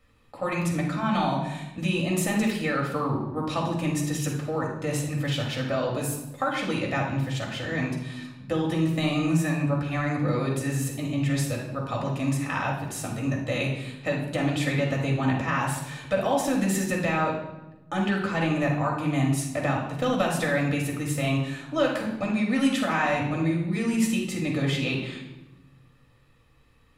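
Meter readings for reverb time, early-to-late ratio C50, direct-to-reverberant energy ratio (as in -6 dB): 1.0 s, 4.0 dB, -2.0 dB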